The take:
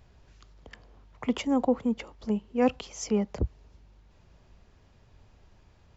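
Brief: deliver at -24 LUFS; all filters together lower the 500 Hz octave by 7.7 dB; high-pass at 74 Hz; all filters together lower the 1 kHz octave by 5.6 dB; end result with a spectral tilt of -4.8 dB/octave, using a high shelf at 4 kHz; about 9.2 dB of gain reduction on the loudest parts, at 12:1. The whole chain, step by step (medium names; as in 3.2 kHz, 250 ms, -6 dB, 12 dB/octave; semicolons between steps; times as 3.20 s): high-pass 74 Hz; peaking EQ 500 Hz -7.5 dB; peaking EQ 1 kHz -4 dB; treble shelf 4 kHz -4.5 dB; compression 12:1, threshold -32 dBFS; trim +15 dB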